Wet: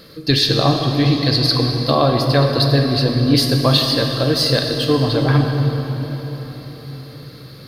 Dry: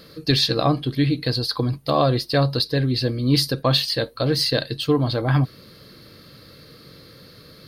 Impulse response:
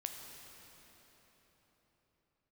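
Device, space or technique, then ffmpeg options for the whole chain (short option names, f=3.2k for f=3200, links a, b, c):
cathedral: -filter_complex "[1:a]atrim=start_sample=2205[a];[0:a][a]afir=irnorm=-1:irlink=0,asettb=1/sr,asplit=3[b][c][d];[b]atrim=end=1.054[e];[c]atrim=start=1.05:end=1.95,asetpts=PTS-STARTPTS,afade=t=in:d=0.004:c=qsin,afade=t=out:st=0.896:d=0.004:c=qsin,equalizer=f=4.9k:w=1.1:g=4.5[f];[d]atrim=start=1.946[g];[e][f]acrossfade=d=0.004:c1=hsin:c2=qsin[h];[h][g]acrossfade=d=0.004:c1=qsin:c2=hsin,volume=6dB"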